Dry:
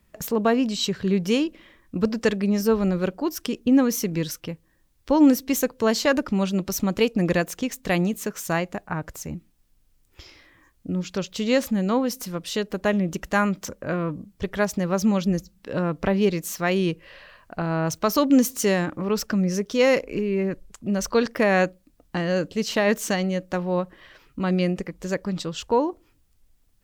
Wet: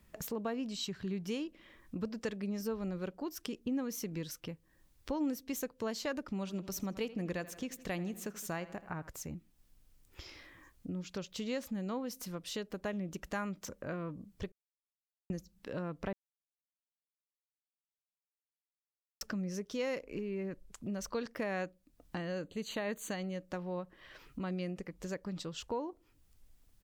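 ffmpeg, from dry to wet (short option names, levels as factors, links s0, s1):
-filter_complex "[0:a]asettb=1/sr,asplit=3[s0][s1][s2];[s0]atrim=end=0.774[s3];[s1]atrim=start=0.77:end=1.29,asetpts=PTS-STARTPTS,afade=t=in:d=0.004:c=qsin,afade=t=out:st=0.516:d=0.004:c=qsin,equalizer=f=500:t=o:w=0.24:g=-14[s4];[s2]atrim=start=1.286[s5];[s3][s4]acrossfade=d=0.004:c1=hsin:c2=qsin[s6];[s6][s5]acrossfade=d=0.004:c1=qsin:c2=hsin,asplit=3[s7][s8][s9];[s7]afade=t=out:st=6.46:d=0.02[s10];[s8]asplit=2[s11][s12];[s12]adelay=82,lowpass=f=4400:p=1,volume=0.141,asplit=2[s13][s14];[s14]adelay=82,lowpass=f=4400:p=1,volume=0.54,asplit=2[s15][s16];[s16]adelay=82,lowpass=f=4400:p=1,volume=0.54,asplit=2[s17][s18];[s18]adelay=82,lowpass=f=4400:p=1,volume=0.54,asplit=2[s19][s20];[s20]adelay=82,lowpass=f=4400:p=1,volume=0.54[s21];[s11][s13][s15][s17][s19][s21]amix=inputs=6:normalize=0,afade=t=in:st=6.46:d=0.02,afade=t=out:st=9.08:d=0.02[s22];[s9]afade=t=in:st=9.08:d=0.02[s23];[s10][s22][s23]amix=inputs=3:normalize=0,asettb=1/sr,asplit=3[s24][s25][s26];[s24]atrim=end=22.184[s27];[s25]atrim=start=22.18:end=23.35,asetpts=PTS-STARTPTS,afade=t=in:d=0.004:c=qsin,afade=t=out:st=1.166:d=0.004:c=qsin,asuperstop=centerf=5300:order=12:qfactor=3.9[s28];[s26]atrim=start=23.346[s29];[s27][s28]acrossfade=d=0.004:c1=hsin:c2=qsin[s30];[s30][s29]acrossfade=d=0.004:c1=qsin:c2=hsin,asplit=5[s31][s32][s33][s34][s35];[s31]atrim=end=14.52,asetpts=PTS-STARTPTS,afade=t=out:st=14.516:d=0.004:c=hsin[s36];[s32]atrim=start=14.52:end=15.3,asetpts=PTS-STARTPTS,volume=0[s37];[s33]atrim=start=15.3:end=16.13,asetpts=PTS-STARTPTS,afade=t=in:d=0.004:c=hsin,afade=t=out:st=0.826:d=0.004:c=hsin[s38];[s34]atrim=start=16.13:end=19.21,asetpts=PTS-STARTPTS,volume=0[s39];[s35]atrim=start=19.21,asetpts=PTS-STARTPTS,afade=t=in:d=0.004:c=hsin[s40];[s36][s37][s38][s39][s40]concat=n=5:v=0:a=1,acompressor=threshold=0.00562:ratio=2,volume=0.841"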